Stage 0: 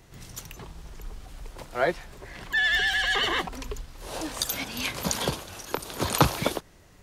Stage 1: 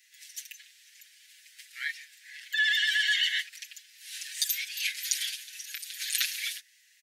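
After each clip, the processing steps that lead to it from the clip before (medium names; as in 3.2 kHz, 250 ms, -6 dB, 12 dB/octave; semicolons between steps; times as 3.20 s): steep high-pass 1.7 kHz 72 dB/octave; comb 6.5 ms, depth 98%; trim -2.5 dB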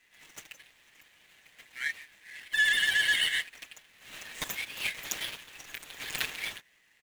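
median filter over 9 samples; trim +2 dB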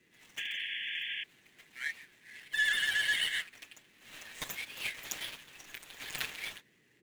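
band noise 110–430 Hz -68 dBFS; flange 1.5 Hz, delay 3.1 ms, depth 7.3 ms, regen +83%; painted sound noise, 0.37–1.24 s, 1.6–3.5 kHz -38 dBFS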